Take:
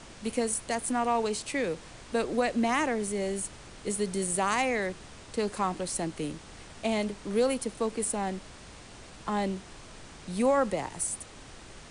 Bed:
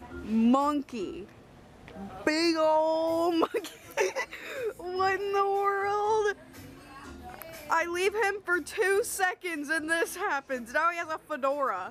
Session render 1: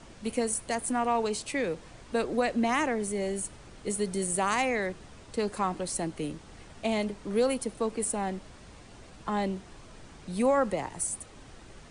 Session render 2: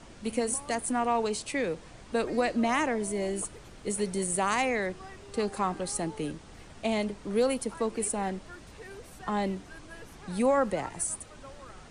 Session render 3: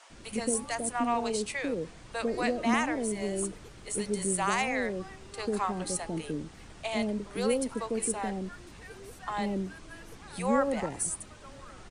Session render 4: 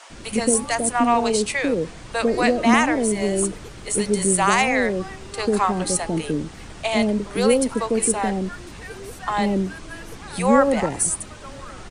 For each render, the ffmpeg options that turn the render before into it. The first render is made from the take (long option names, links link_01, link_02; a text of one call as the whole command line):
ffmpeg -i in.wav -af "afftdn=noise_reduction=6:noise_floor=-49" out.wav
ffmpeg -i in.wav -i bed.wav -filter_complex "[1:a]volume=-21dB[link_01];[0:a][link_01]amix=inputs=2:normalize=0" out.wav
ffmpeg -i in.wav -filter_complex "[0:a]acrossover=split=590[link_01][link_02];[link_01]adelay=100[link_03];[link_03][link_02]amix=inputs=2:normalize=0" out.wav
ffmpeg -i in.wav -af "volume=10.5dB" out.wav